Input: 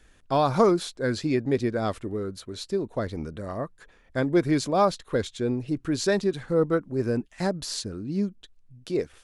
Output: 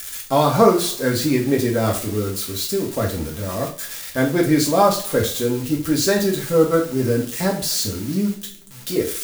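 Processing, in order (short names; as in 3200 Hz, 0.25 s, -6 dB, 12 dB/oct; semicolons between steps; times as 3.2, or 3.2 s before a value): switching spikes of -26 dBFS; two-slope reverb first 0.38 s, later 1.9 s, from -26 dB, DRR -1.5 dB; gain +3 dB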